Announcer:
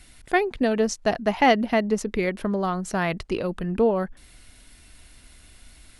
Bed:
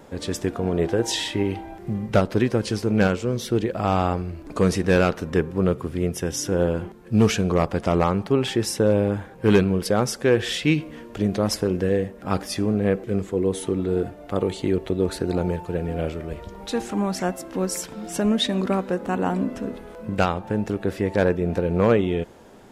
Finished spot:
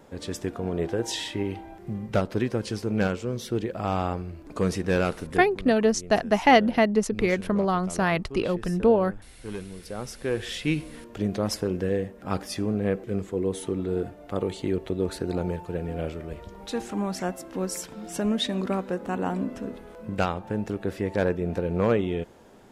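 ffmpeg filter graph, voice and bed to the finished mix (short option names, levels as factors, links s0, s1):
-filter_complex "[0:a]adelay=5050,volume=1.12[s0];[1:a]volume=2.82,afade=t=out:st=5.21:d=0.37:silence=0.211349,afade=t=in:st=9.78:d=1.1:silence=0.188365[s1];[s0][s1]amix=inputs=2:normalize=0"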